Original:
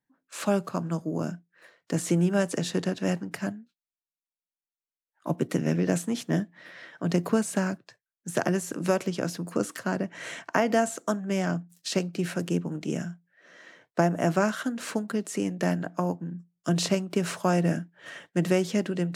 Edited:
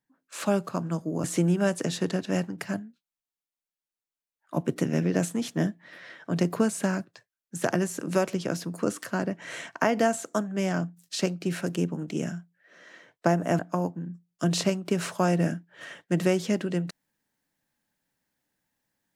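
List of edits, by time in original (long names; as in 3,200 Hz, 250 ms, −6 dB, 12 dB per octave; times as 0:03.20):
0:01.24–0:01.97: remove
0:14.32–0:15.84: remove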